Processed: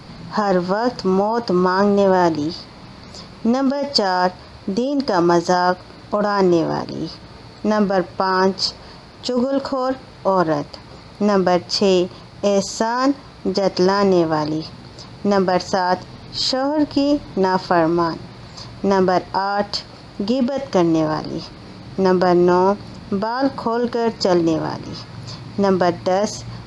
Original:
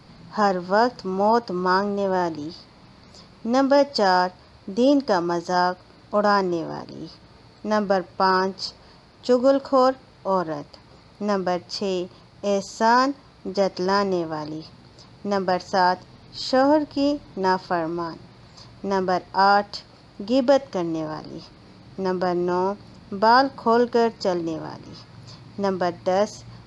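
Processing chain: negative-ratio compressor -23 dBFS, ratio -1; gain +7 dB

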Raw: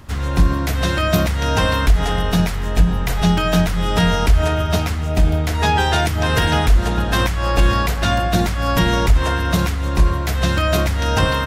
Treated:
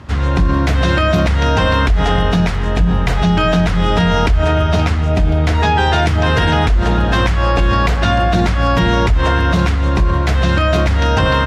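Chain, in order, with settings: HPF 42 Hz 24 dB/oct; high shelf 6400 Hz -7.5 dB; in parallel at +0.5 dB: negative-ratio compressor -19 dBFS; on the sum: air absorption 60 m; gain -1 dB

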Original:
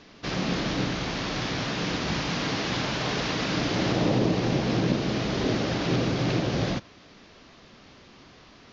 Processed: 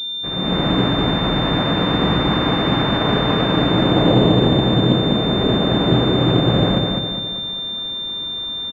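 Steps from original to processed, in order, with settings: on a send: feedback echo 0.205 s, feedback 45%, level -4 dB; on the sum: AGC gain up to 11 dB; pulse-width modulation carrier 3600 Hz

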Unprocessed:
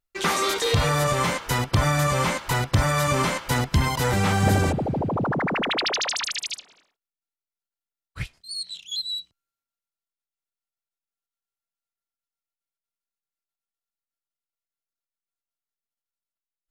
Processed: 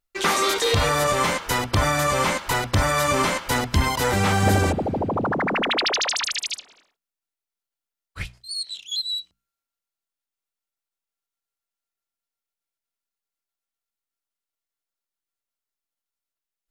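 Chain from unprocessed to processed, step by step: bell 140 Hz -9 dB 0.49 oct; notches 60/120/180/240 Hz; gain +2.5 dB

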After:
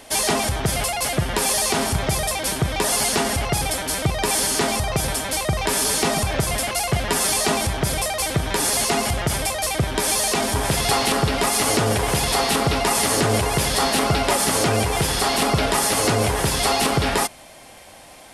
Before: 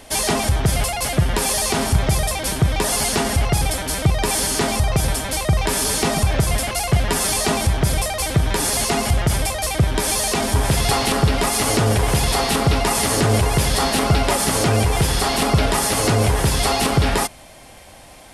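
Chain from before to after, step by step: low shelf 130 Hz -10 dB

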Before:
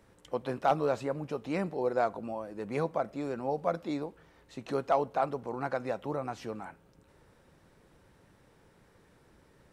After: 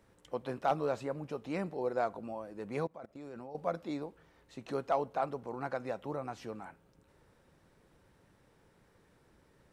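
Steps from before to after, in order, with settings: 2.87–3.55 level quantiser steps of 21 dB; gain -4 dB

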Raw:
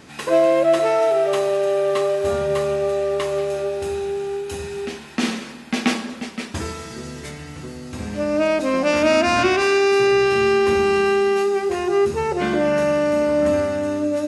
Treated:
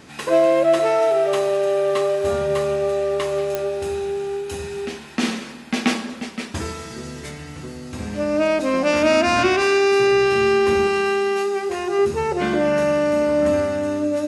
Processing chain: 10.87–11.99 low shelf 380 Hz -6 dB; pops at 3.55, -9 dBFS

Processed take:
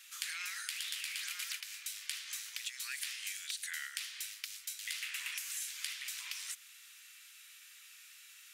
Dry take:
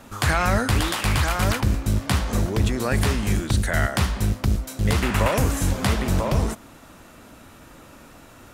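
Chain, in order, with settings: inverse Chebyshev high-pass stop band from 630 Hz, stop band 60 dB; compressor 5:1, threshold -37 dBFS, peak gain reduction 11.5 dB; gain -1 dB

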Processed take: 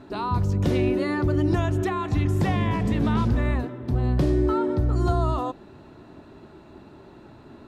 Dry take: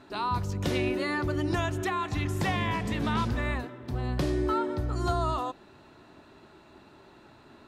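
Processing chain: in parallel at -3 dB: limiter -26 dBFS, peak gain reduction 9.5 dB; on the sum: tilt shelf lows +5.5 dB, about 740 Hz

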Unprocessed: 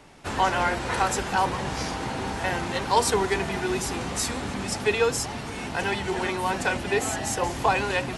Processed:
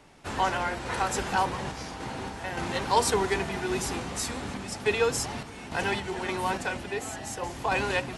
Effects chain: random-step tremolo; gain -1.5 dB

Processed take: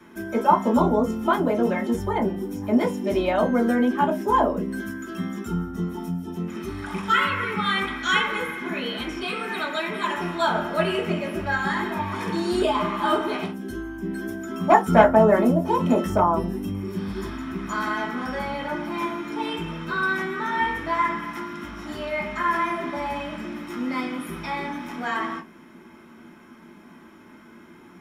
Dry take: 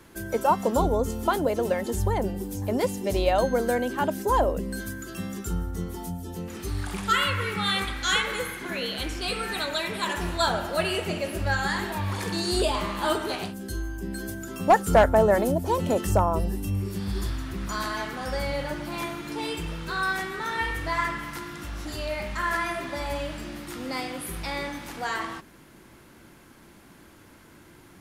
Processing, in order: 9.23–10.57 HPF 200 Hz 6 dB/oct; reverb RT60 0.20 s, pre-delay 3 ms, DRR -4 dB; gain -9 dB

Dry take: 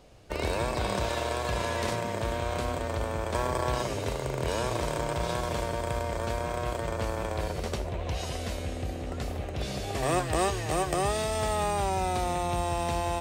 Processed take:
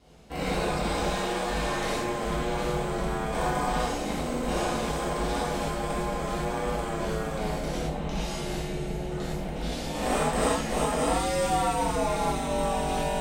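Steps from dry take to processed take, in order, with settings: ring modulator 110 Hz; non-linear reverb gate 0.14 s flat, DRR -8 dB; gain -4 dB

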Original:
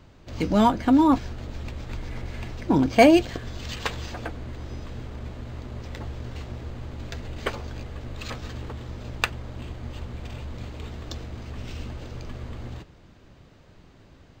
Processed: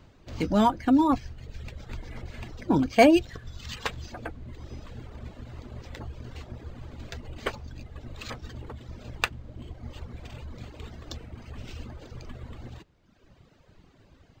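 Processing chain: reverb removal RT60 1.3 s; gain -2 dB

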